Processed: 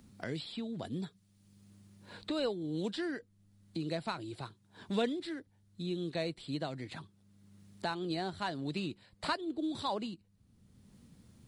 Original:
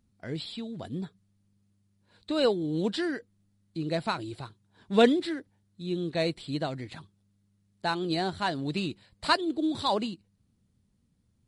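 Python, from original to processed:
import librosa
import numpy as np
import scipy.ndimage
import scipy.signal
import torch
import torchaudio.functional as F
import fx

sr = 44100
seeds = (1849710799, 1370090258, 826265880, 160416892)

y = fx.band_squash(x, sr, depth_pct=70)
y = y * librosa.db_to_amplitude(-7.0)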